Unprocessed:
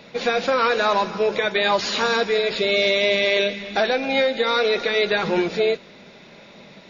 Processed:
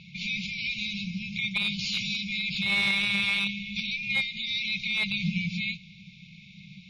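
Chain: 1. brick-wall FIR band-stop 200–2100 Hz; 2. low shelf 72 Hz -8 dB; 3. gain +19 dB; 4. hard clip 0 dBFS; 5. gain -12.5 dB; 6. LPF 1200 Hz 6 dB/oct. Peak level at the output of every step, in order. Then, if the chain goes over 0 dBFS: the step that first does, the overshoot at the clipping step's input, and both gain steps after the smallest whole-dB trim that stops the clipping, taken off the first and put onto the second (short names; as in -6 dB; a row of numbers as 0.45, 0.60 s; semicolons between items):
-11.0, -11.0, +8.0, 0.0, -12.5, -16.0 dBFS; step 3, 8.0 dB; step 3 +11 dB, step 5 -4.5 dB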